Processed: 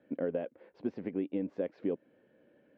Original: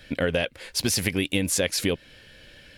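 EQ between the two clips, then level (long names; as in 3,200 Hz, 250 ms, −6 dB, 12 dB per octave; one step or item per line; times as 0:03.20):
four-pole ladder band-pass 330 Hz, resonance 25%
high-frequency loss of the air 170 metres
low-shelf EQ 270 Hz −9 dB
+8.0 dB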